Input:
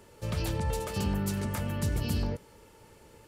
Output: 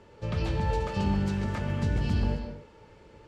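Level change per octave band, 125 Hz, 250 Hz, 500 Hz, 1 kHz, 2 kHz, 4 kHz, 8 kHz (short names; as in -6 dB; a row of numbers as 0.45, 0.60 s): +3.0, +3.0, +2.0, +4.0, +2.5, -1.5, -11.0 dB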